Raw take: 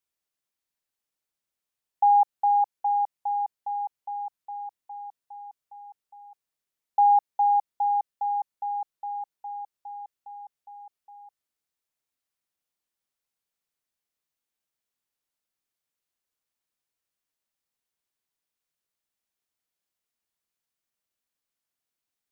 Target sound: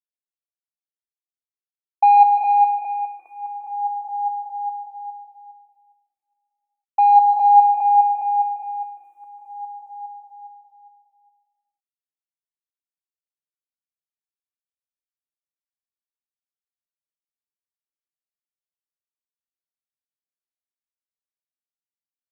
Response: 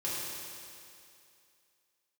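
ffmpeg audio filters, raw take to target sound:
-filter_complex "[0:a]agate=range=-33dB:threshold=-34dB:ratio=3:detection=peak,aecho=1:1:2.6:0.85,acontrast=75,asplit=2[link_01][link_02];[1:a]atrim=start_sample=2205,afade=type=out:start_time=0.43:duration=0.01,atrim=end_sample=19404,adelay=143[link_03];[link_02][link_03]afir=irnorm=-1:irlink=0,volume=-8.5dB[link_04];[link_01][link_04]amix=inputs=2:normalize=0,asplit=2[link_05][link_06];[link_06]afreqshift=-0.34[link_07];[link_05][link_07]amix=inputs=2:normalize=1,volume=-3.5dB"

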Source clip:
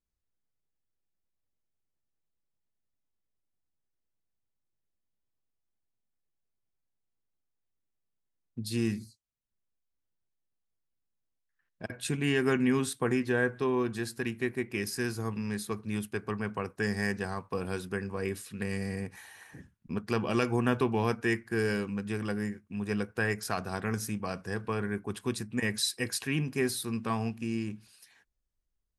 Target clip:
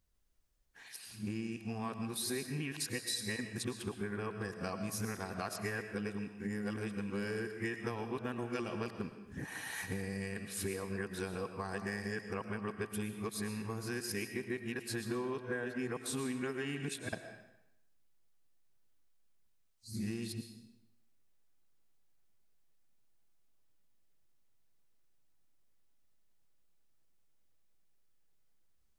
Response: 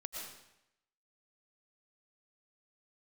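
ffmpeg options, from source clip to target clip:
-filter_complex "[0:a]areverse,acompressor=threshold=-42dB:ratio=16,asplit=2[link_01][link_02];[1:a]atrim=start_sample=2205,lowshelf=frequency=150:gain=-7.5[link_03];[link_02][link_03]afir=irnorm=-1:irlink=0,volume=0.5dB[link_04];[link_01][link_04]amix=inputs=2:normalize=0,volume=3.5dB"

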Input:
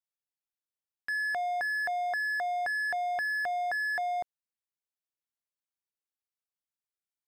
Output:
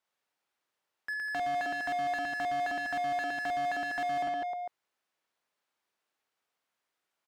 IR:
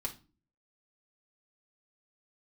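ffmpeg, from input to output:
-filter_complex "[0:a]aecho=1:1:50|115|199.5|309.4|452.2:0.631|0.398|0.251|0.158|0.1,asplit=2[link_01][link_02];[link_02]highpass=frequency=720:poles=1,volume=31dB,asoftclip=type=tanh:threshold=-19dB[link_03];[link_01][link_03]amix=inputs=2:normalize=0,lowpass=frequency=1200:poles=1,volume=-6dB,volume=-5.5dB"

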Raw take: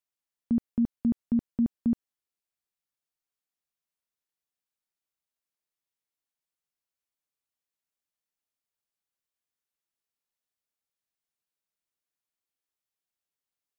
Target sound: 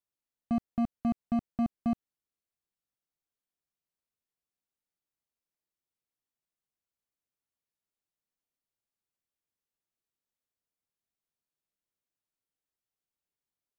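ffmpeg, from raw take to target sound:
ffmpeg -i in.wav -af "tiltshelf=frequency=700:gain=4.5,asoftclip=type=hard:threshold=-23.5dB,volume=-1.5dB" out.wav

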